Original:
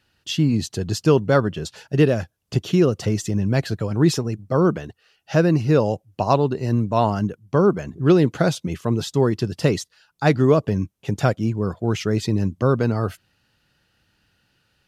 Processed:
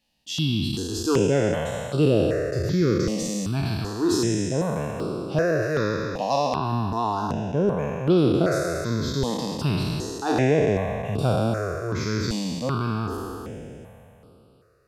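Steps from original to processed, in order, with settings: spectral trails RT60 2.84 s; 5.62–6.56 tilt shelf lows -3.5 dB; step phaser 2.6 Hz 380–6500 Hz; gain -5.5 dB

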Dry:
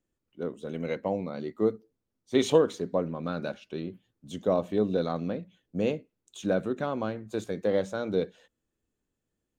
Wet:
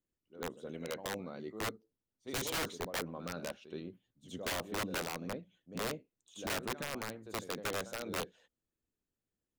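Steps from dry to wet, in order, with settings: harmonic-percussive split harmonic -6 dB; reverse echo 74 ms -13 dB; wrapped overs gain 24 dB; gain -6 dB

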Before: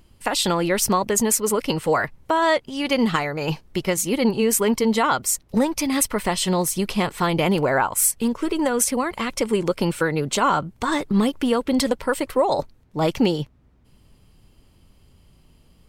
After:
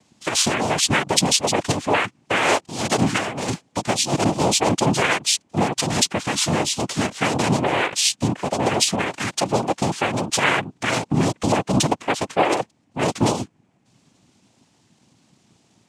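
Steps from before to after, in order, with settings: high shelf 4400 Hz +8 dB; noise vocoder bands 4

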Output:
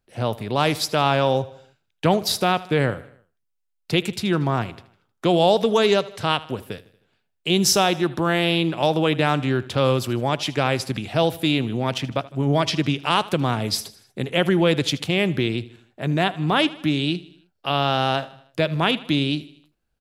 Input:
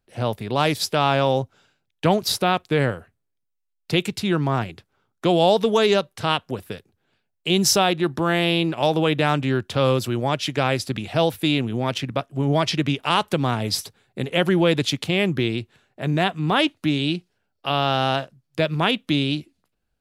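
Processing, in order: feedback echo 78 ms, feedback 52%, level -19 dB

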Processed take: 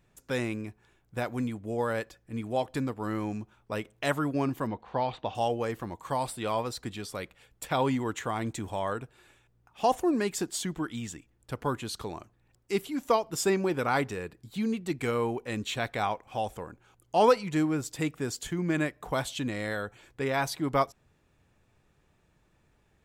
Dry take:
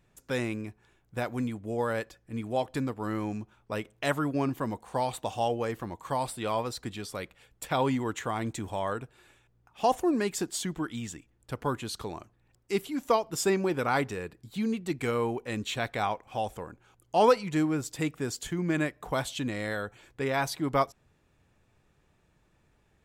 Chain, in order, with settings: 4.67–5.35 LPF 4100 Hz 24 dB/oct

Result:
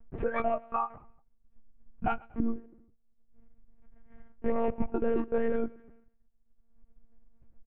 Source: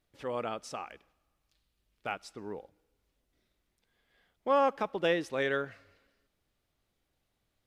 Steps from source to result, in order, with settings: half-waves squared off; LPF 2300 Hz 24 dB/oct; expander -59 dBFS; spectral noise reduction 27 dB; tilt -4.5 dB/oct; comb 3.4 ms, depth 66%; in parallel at 0 dB: upward compressor, threshold -24 dBFS; on the sum: limiter -16 dBFS, peak gain reduction 21 dB; compressor 2.5:1, threshold -36 dBFS, peak gain reduction 11 dB; feedback echo 0.119 s, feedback 49%, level -23.5 dB; monotone LPC vocoder at 8 kHz 230 Hz; gain +6.5 dB

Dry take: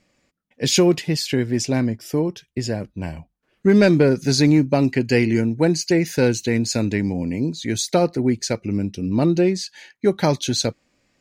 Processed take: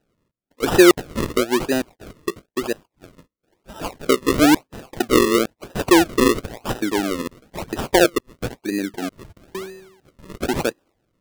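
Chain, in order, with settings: 9.32–10.3 resonator 190 Hz, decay 0.9 s, mix 80%; LFO high-pass square 1.1 Hz 340–3400 Hz; decimation with a swept rate 39×, swing 100% 1 Hz; gain -1.5 dB

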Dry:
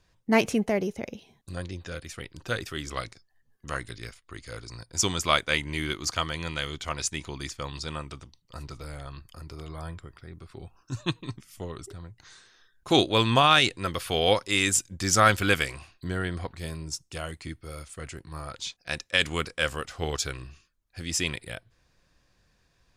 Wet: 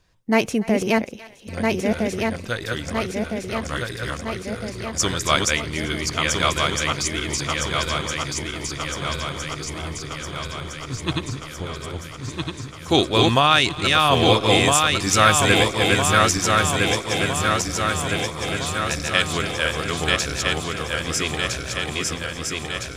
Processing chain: regenerating reverse delay 0.655 s, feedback 78%, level -1.5 dB; thinning echo 0.289 s, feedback 76%, high-pass 820 Hz, level -19 dB; gain +3 dB

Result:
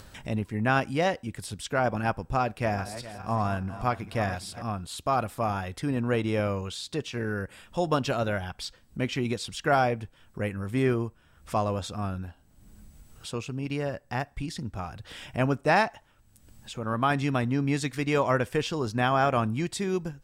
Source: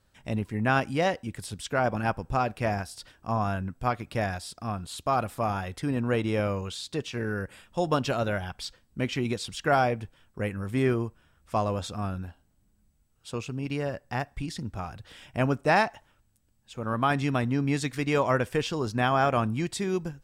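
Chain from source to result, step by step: 2.4–4.62 regenerating reverse delay 0.206 s, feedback 63%, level -13 dB; upward compressor, threshold -34 dBFS

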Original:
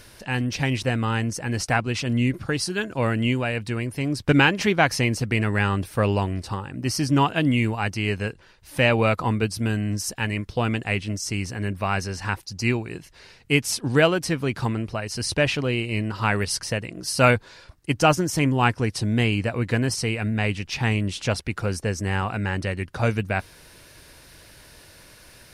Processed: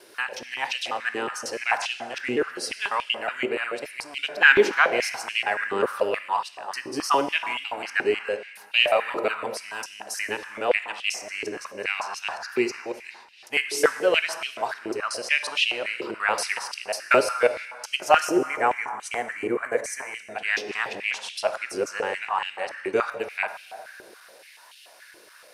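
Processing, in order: local time reversal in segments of 0.182 s; spectral gain 18.37–20.27, 2400–5700 Hz -13 dB; plate-style reverb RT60 2.1 s, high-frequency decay 0.6×, DRR 8 dB; stepped high-pass 7 Hz 390–2900 Hz; gain -4 dB

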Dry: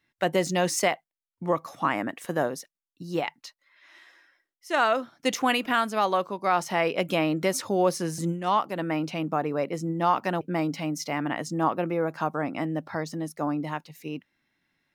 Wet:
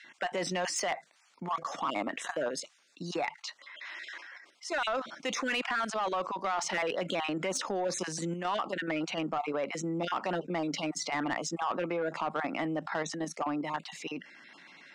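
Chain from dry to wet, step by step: random spectral dropouts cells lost 21%; level quantiser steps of 10 dB; Chebyshev band-pass 170–7800 Hz, order 3; overdrive pedal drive 15 dB, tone 4900 Hz, clips at -16.5 dBFS; fast leveller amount 50%; gain -6 dB

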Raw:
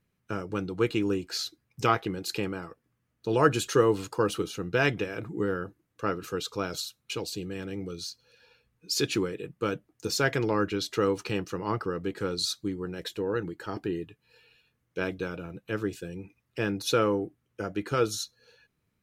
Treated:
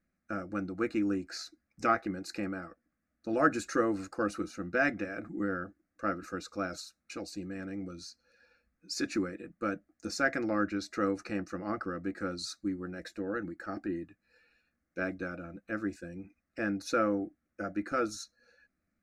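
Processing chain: air absorption 73 m; fixed phaser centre 640 Hz, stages 8

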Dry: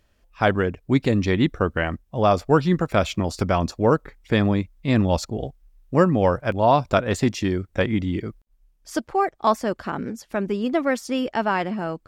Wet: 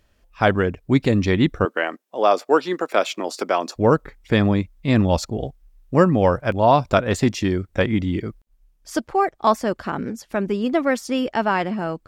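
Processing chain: 1.65–3.76 HPF 310 Hz 24 dB/oct; gain +2 dB

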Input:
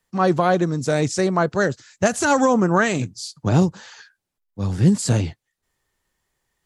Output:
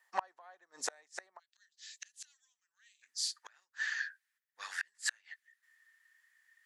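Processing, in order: bell 1800 Hz +12.5 dB 0.28 oct; flipped gate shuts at -12 dBFS, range -36 dB; ladder high-pass 660 Hz, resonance 40%, from 1.38 s 2800 Hz, from 3.01 s 1300 Hz; overloaded stage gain 25 dB; gain +5 dB

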